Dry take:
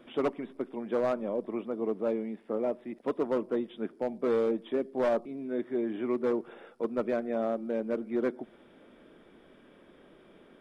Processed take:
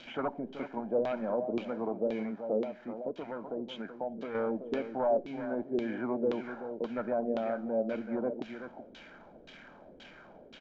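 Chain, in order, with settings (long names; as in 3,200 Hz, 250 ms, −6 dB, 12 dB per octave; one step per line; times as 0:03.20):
spike at every zero crossing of −38 dBFS
comb filter 1.3 ms, depth 52%
brickwall limiter −26 dBFS, peak gain reduction 8.5 dB
0:02.63–0:04.35: downward compressor, threshold −37 dBFS, peak gain reduction 7 dB
slap from a distant wall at 65 metres, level −9 dB
auto-filter low-pass saw down 1.9 Hz 380–3,500 Hz
downsampling to 16,000 Hz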